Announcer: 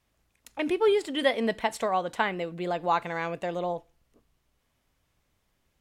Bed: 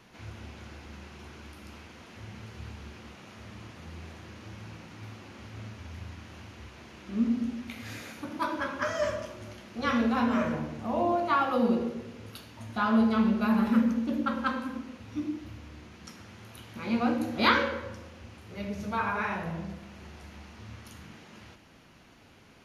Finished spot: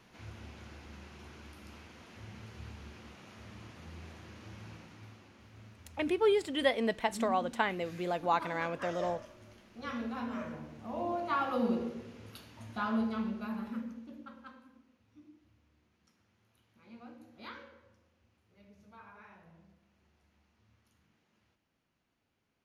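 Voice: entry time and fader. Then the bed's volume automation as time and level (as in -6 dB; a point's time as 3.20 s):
5.40 s, -4.0 dB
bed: 4.72 s -4.5 dB
5.38 s -12 dB
10.59 s -12 dB
11.47 s -5.5 dB
12.67 s -5.5 dB
14.72 s -24.5 dB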